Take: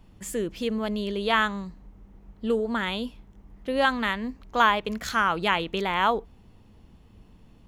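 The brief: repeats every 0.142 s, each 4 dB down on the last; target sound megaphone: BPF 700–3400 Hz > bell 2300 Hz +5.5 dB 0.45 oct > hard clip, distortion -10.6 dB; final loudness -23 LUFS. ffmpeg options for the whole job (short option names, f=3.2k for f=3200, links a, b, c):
-af "highpass=700,lowpass=3.4k,equalizer=f=2.3k:t=o:w=0.45:g=5.5,aecho=1:1:142|284|426|568|710|852|994|1136|1278:0.631|0.398|0.25|0.158|0.0994|0.0626|0.0394|0.0249|0.0157,asoftclip=type=hard:threshold=-18.5dB,volume=4.5dB"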